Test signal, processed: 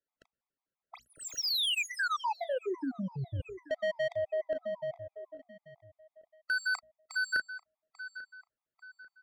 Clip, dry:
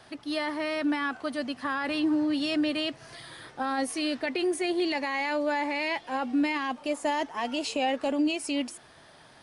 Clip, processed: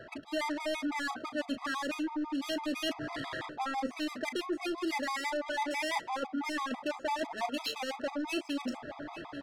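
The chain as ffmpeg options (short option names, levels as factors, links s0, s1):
-filter_complex "[0:a]asplit=2[s0][s1];[s1]aeval=exprs='0.158*sin(PI/2*3.55*val(0)/0.158)':c=same,volume=0.376[s2];[s0][s2]amix=inputs=2:normalize=0,lowpass=f=7700:w=0.5412,lowpass=f=7700:w=1.3066,bandreject=f=60:t=h:w=6,bandreject=f=120:t=h:w=6,bandreject=f=180:t=h:w=6,bandreject=f=240:t=h:w=6,adynamicsmooth=sensitivity=2:basefreq=1300,highshelf=f=3700:g=5.5,asplit=2[s3][s4];[s4]adelay=36,volume=0.237[s5];[s3][s5]amix=inputs=2:normalize=0,asplit=2[s6][s7];[s7]adelay=842,lowpass=f=2800:p=1,volume=0.0794,asplit=2[s8][s9];[s9]adelay=842,lowpass=f=2800:p=1,volume=0.41,asplit=2[s10][s11];[s11]adelay=842,lowpass=f=2800:p=1,volume=0.41[s12];[s6][s8][s10][s12]amix=inputs=4:normalize=0,areverse,acompressor=threshold=0.0251:ratio=20,areverse,lowshelf=f=260:g=-6,afftfilt=real='re*gt(sin(2*PI*6*pts/sr)*(1-2*mod(floor(b*sr/1024/650),2)),0)':imag='im*gt(sin(2*PI*6*pts/sr)*(1-2*mod(floor(b*sr/1024/650),2)),0)':win_size=1024:overlap=0.75,volume=1.68"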